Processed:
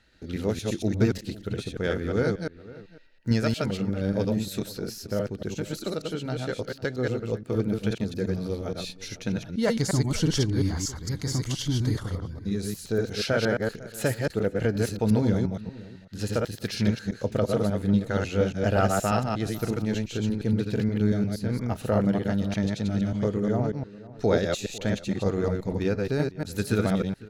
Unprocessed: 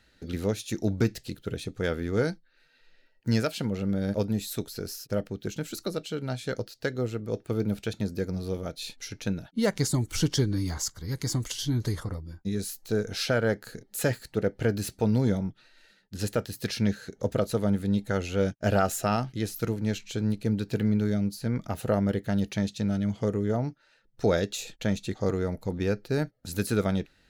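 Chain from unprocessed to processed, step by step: reverse delay 0.118 s, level -2 dB; high shelf 11000 Hz -11 dB; outdoor echo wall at 86 m, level -19 dB

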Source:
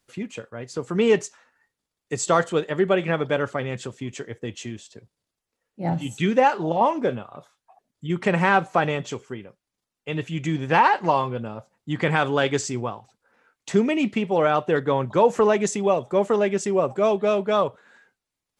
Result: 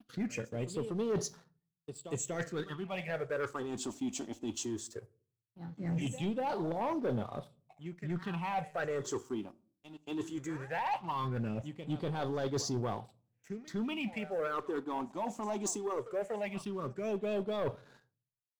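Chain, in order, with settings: pre-echo 0.241 s -20 dB; expander -51 dBFS; reverse; compressor 8:1, threshold -31 dBFS, peak gain reduction 18.5 dB; reverse; phaser stages 6, 0.18 Hz, lowest notch 120–2400 Hz; sample leveller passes 2; on a send at -18.5 dB: reverb RT60 0.45 s, pre-delay 3 ms; on the sum: gain -4.5 dB

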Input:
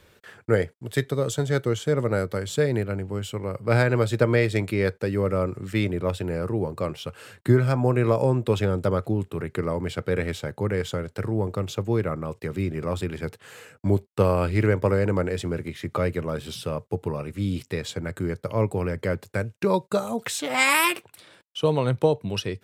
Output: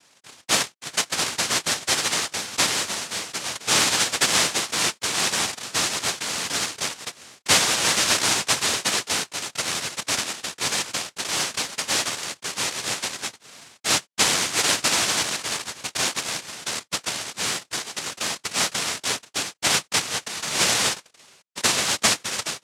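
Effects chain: noise vocoder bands 1

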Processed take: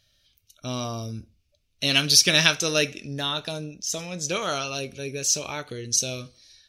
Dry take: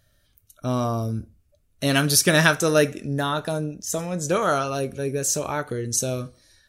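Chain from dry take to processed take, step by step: band shelf 3700 Hz +13.5 dB; gain -7 dB

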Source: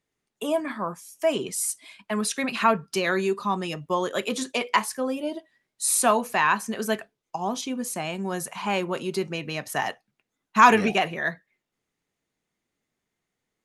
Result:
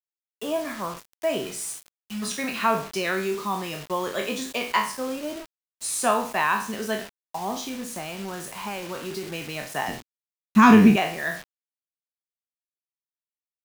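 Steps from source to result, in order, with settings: spectral trails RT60 0.44 s; Bessel low-pass 7800 Hz, order 2; 1.67–2.22 spectral delete 230–2300 Hz; 7.66–9.27 compressor, threshold -26 dBFS, peak gain reduction 7 dB; requantised 6-bit, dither none; 9.88–10.96 resonant low shelf 380 Hz +12 dB, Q 1.5; gain -3 dB

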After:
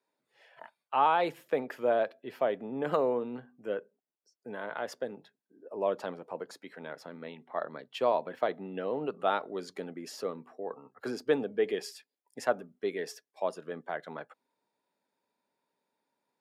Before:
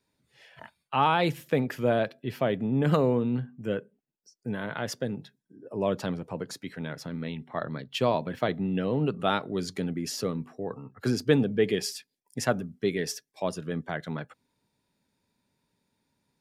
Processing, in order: HPF 640 Hz 12 dB/oct; tilt shelf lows +8.5 dB, about 1300 Hz; notch 5900 Hz, Q 26; gain -2.5 dB

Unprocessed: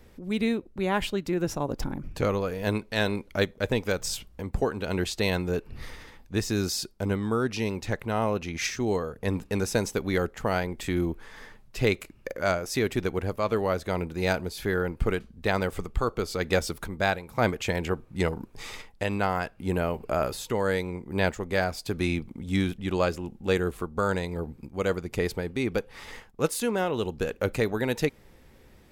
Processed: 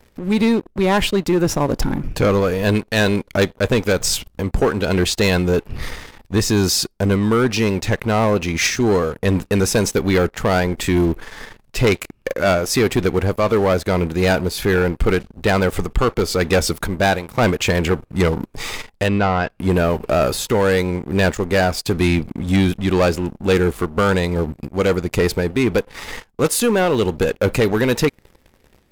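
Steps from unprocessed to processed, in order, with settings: sample leveller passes 3; 19.08–19.5 air absorption 140 m; gain +1.5 dB

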